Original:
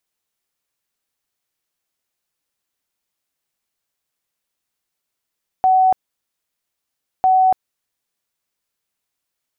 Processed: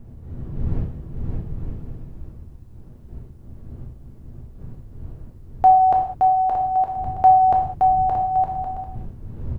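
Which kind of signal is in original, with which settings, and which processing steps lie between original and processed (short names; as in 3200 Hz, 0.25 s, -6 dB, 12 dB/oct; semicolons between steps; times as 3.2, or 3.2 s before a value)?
tone bursts 751 Hz, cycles 215, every 1.60 s, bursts 2, -10 dBFS
wind noise 99 Hz -36 dBFS; on a send: bouncing-ball echo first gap 0.57 s, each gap 0.6×, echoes 5; on the sum: non-linear reverb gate 0.23 s falling, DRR 0.5 dB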